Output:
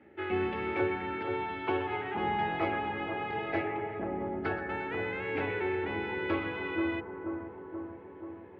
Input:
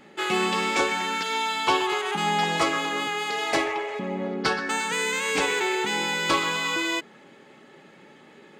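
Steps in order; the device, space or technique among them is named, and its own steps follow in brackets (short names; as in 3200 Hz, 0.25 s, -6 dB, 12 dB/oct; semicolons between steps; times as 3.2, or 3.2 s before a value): 1.85–3.65 doubler 23 ms -5 dB; sub-octave bass pedal (octaver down 2 oct, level 0 dB; speaker cabinet 89–2300 Hz, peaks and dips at 160 Hz -7 dB, 340 Hz +7 dB, 1100 Hz -9 dB); analogue delay 0.481 s, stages 4096, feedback 68%, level -6.5 dB; gain -8 dB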